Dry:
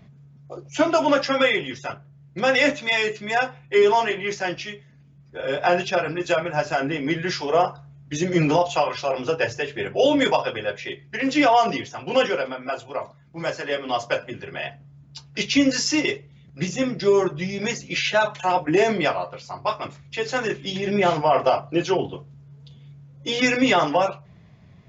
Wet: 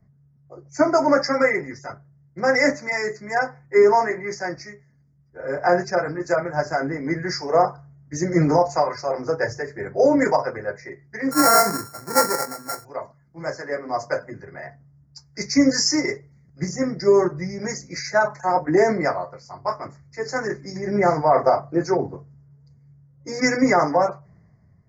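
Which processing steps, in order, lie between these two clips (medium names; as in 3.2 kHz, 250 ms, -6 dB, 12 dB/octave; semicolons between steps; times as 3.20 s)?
11.31–12.85 s: sorted samples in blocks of 32 samples; Chebyshev band-stop 2–4.8 kHz, order 3; three bands expanded up and down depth 40%; trim +1 dB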